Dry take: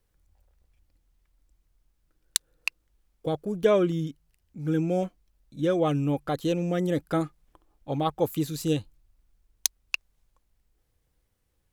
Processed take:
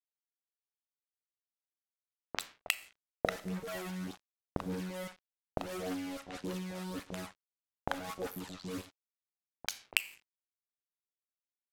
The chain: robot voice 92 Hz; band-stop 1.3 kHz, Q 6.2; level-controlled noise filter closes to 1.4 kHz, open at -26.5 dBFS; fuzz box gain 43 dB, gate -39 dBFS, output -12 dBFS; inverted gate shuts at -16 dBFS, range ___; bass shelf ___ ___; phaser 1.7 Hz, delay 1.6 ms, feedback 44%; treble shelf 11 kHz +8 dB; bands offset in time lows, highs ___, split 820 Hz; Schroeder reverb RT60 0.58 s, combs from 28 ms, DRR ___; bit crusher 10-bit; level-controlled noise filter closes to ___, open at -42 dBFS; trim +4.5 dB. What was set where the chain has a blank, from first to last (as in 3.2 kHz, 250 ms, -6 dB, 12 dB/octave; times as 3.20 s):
-28 dB, 120 Hz, -7.5 dB, 40 ms, 15 dB, 660 Hz